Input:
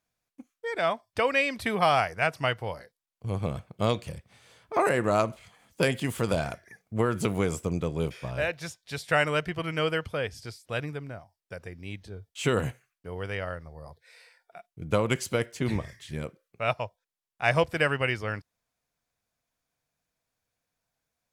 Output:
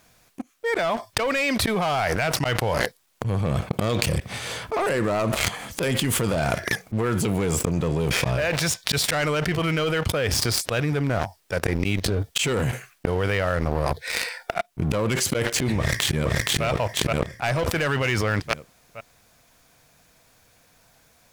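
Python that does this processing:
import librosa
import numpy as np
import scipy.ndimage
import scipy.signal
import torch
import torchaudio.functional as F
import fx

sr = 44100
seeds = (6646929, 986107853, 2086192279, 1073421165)

y = fx.echo_throw(x, sr, start_s=15.78, length_s=0.87, ms=470, feedback_pct=40, wet_db=-0.5)
y = fx.leveller(y, sr, passes=3)
y = fx.auto_swell(y, sr, attack_ms=346.0)
y = fx.env_flatten(y, sr, amount_pct=100)
y = y * librosa.db_to_amplitude(-9.0)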